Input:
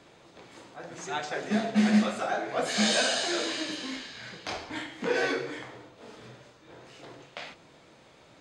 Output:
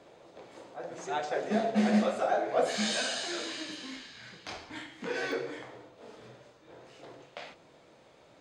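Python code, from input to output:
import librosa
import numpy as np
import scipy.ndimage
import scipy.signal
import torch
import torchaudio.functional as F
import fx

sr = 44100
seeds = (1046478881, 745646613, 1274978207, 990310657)

y = fx.peak_eq(x, sr, hz=560.0, db=fx.steps((0.0, 10.0), (2.76, -2.5), (5.32, 5.5)), octaves=1.4)
y = y * librosa.db_to_amplitude(-5.5)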